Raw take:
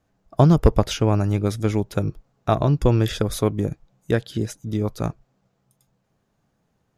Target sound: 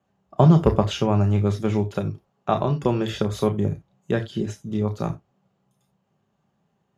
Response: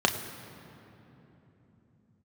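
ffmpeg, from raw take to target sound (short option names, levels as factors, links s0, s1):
-filter_complex "[0:a]asettb=1/sr,asplit=3[s0][s1][s2];[s0]atrim=end=1.894[s3];[s1]atrim=start=1.89:end=3.11,asetpts=PTS-STARTPTS,afade=t=in:d=0.004:c=qsin,afade=t=out:st=1.216:d=0.004:c=qsin,lowshelf=f=120:g=-9[s4];[s2]atrim=start=3.106[s5];[s3][s4]acrossfade=d=0.004:c1=hsin:c2=qsin[s6];[s6][s5]acrossfade=d=0.004:c1=qsin:c2=hsin[s7];[1:a]atrim=start_sample=2205,afade=t=out:st=0.14:d=0.01,atrim=end_sample=6615[s8];[s7][s8]afir=irnorm=-1:irlink=0,volume=0.2"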